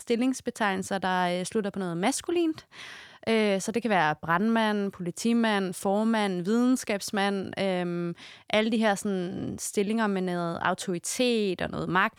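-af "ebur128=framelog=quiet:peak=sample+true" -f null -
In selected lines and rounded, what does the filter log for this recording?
Integrated loudness:
  I:         -27.3 LUFS
  Threshold: -37.5 LUFS
Loudness range:
  LRA:         2.3 LU
  Threshold: -47.4 LUFS
  LRA low:   -28.5 LUFS
  LRA high:  -26.2 LUFS
Sample peak:
  Peak:       -8.8 dBFS
True peak:
  Peak:       -8.8 dBFS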